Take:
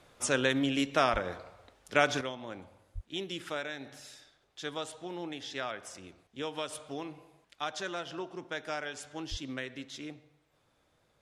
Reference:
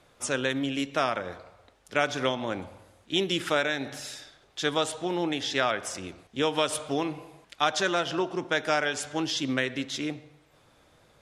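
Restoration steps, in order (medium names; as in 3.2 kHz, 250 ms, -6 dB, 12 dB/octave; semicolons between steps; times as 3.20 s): de-plosive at 1.12/2.94/9.30 s; trim 0 dB, from 2.21 s +11 dB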